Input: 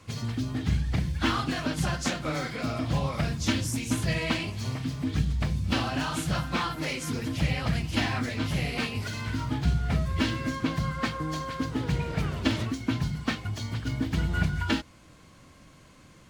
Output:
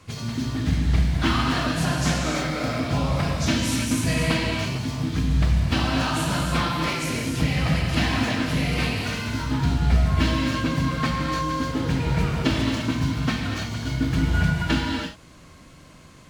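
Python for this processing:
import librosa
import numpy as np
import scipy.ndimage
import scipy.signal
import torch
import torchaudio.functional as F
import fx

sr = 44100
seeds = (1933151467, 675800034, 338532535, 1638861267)

y = fx.rev_gated(x, sr, seeds[0], gate_ms=360, shape='flat', drr_db=-1.0)
y = F.gain(torch.from_numpy(y), 2.0).numpy()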